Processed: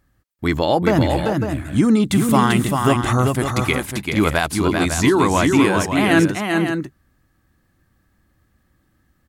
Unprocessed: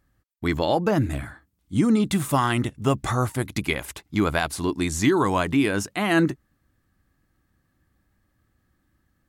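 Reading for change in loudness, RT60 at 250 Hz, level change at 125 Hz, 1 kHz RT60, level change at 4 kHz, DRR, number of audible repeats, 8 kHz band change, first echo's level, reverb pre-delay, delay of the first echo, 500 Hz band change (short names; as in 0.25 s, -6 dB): +6.0 dB, none, +6.0 dB, none, +6.5 dB, none, 2, +6.0 dB, -4.5 dB, none, 0.391 s, +6.0 dB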